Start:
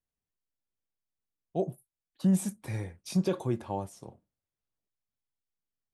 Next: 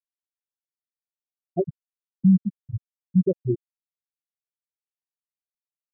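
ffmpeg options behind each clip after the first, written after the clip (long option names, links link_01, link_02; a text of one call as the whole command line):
ffmpeg -i in.wav -af "afftfilt=real='re*gte(hypot(re,im),0.251)':imag='im*gte(hypot(re,im),0.251)':win_size=1024:overlap=0.75,volume=8dB" out.wav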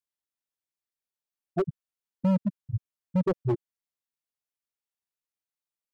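ffmpeg -i in.wav -af "asoftclip=type=hard:threshold=-20.5dB" out.wav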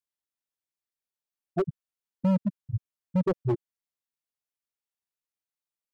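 ffmpeg -i in.wav -af anull out.wav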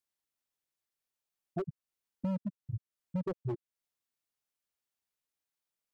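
ffmpeg -i in.wav -af "acompressor=threshold=-39dB:ratio=3,volume=2dB" out.wav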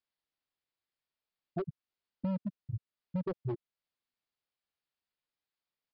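ffmpeg -i in.wav -af "aresample=11025,aresample=44100" out.wav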